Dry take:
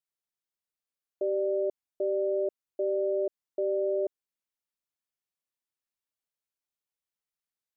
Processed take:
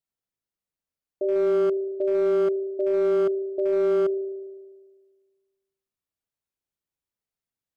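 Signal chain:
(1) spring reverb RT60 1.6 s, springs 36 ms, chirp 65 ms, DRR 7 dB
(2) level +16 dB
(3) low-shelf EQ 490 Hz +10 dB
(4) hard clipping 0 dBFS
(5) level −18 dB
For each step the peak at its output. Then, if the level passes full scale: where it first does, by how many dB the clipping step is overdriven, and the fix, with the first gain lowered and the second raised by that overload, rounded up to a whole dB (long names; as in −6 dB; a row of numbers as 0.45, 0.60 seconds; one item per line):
−17.5, −1.5, +4.0, 0.0, −18.0 dBFS
step 3, 4.0 dB
step 2 +12 dB, step 5 −14 dB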